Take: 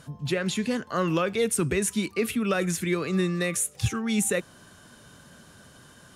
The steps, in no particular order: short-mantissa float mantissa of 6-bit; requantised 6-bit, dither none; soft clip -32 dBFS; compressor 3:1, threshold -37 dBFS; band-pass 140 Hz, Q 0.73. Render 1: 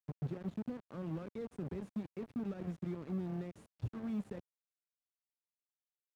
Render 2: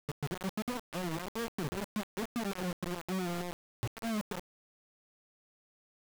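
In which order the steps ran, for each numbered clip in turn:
compressor > soft clip > requantised > band-pass > short-mantissa float; short-mantissa float > band-pass > compressor > soft clip > requantised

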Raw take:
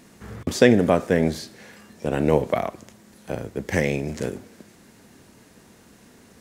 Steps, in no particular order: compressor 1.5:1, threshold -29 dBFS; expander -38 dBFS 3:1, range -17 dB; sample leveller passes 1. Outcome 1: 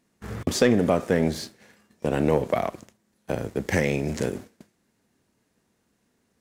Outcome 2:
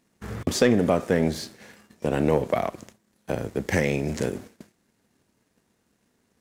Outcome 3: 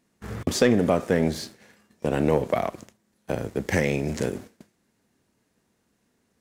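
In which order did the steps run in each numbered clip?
compressor > expander > sample leveller; compressor > sample leveller > expander; expander > compressor > sample leveller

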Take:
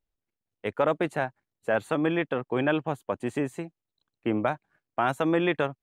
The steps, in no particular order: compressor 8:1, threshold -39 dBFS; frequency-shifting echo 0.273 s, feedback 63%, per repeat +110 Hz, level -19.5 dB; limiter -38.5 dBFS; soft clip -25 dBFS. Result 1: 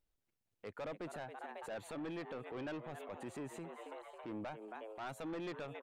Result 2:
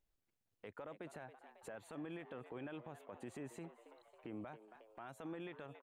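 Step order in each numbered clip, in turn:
frequency-shifting echo > soft clip > compressor > limiter; compressor > frequency-shifting echo > limiter > soft clip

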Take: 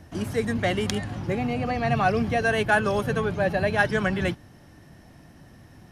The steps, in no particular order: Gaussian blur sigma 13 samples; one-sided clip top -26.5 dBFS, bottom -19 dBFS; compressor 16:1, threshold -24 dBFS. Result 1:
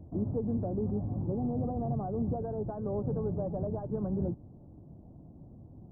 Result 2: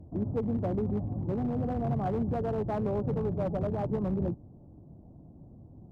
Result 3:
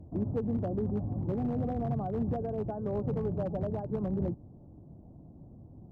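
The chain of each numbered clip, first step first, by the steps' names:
compressor > one-sided clip > Gaussian blur; Gaussian blur > compressor > one-sided clip; compressor > Gaussian blur > one-sided clip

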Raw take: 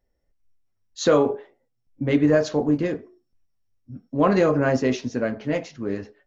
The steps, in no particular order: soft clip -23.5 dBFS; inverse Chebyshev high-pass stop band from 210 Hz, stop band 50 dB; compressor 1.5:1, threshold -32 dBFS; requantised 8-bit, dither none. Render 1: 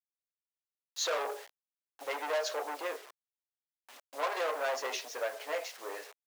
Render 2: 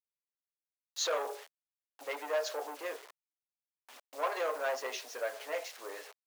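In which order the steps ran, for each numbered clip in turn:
soft clip > requantised > inverse Chebyshev high-pass > compressor; compressor > requantised > soft clip > inverse Chebyshev high-pass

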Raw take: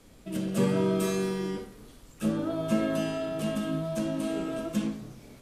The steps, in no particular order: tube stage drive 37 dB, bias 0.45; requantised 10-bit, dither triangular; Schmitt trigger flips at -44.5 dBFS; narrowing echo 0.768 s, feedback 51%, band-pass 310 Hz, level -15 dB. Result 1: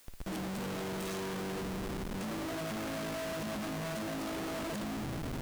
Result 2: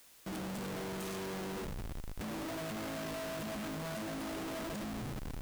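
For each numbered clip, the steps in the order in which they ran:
narrowing echo > Schmitt trigger > tube stage > requantised; tube stage > narrowing echo > Schmitt trigger > requantised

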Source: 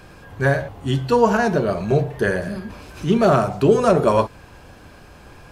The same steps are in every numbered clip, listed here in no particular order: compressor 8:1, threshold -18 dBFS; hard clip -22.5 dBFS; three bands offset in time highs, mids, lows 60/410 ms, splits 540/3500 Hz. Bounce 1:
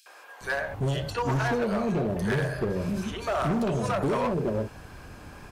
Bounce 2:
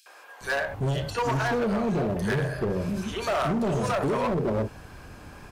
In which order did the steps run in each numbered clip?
compressor > three bands offset in time > hard clip; three bands offset in time > compressor > hard clip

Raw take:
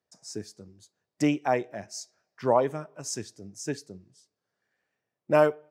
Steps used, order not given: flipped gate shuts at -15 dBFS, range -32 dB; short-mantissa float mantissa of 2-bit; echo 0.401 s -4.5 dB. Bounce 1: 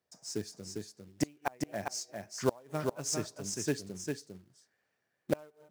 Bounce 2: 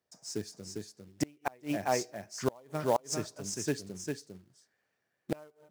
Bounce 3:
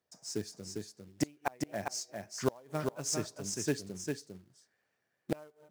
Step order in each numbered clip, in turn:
flipped gate > short-mantissa float > echo; short-mantissa float > echo > flipped gate; short-mantissa float > flipped gate > echo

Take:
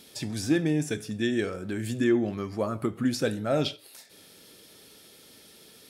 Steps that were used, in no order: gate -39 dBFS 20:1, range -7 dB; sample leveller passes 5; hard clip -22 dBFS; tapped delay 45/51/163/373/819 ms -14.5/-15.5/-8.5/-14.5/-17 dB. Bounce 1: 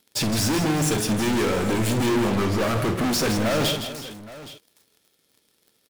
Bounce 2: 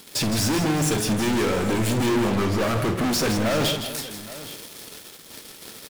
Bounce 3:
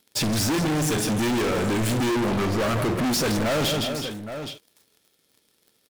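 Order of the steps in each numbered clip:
gate > sample leveller > hard clip > tapped delay; sample leveller > hard clip > tapped delay > gate; gate > sample leveller > tapped delay > hard clip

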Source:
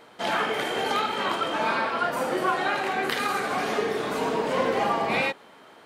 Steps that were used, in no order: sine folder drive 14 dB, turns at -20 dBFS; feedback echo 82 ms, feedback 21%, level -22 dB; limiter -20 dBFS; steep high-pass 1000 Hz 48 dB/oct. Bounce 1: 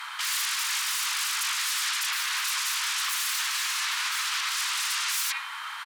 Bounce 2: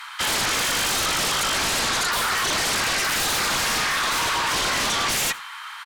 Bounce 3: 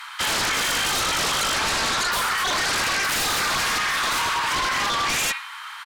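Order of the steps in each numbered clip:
feedback echo > sine folder > steep high-pass > limiter; steep high-pass > limiter > sine folder > feedback echo; feedback echo > limiter > steep high-pass > sine folder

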